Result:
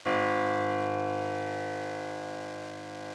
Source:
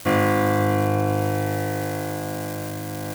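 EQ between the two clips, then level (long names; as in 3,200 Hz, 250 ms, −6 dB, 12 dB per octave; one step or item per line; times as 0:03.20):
low-pass filter 10,000 Hz 24 dB per octave
three-way crossover with the lows and the highs turned down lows −13 dB, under 340 Hz, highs −18 dB, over 6,100 Hz
−5.5 dB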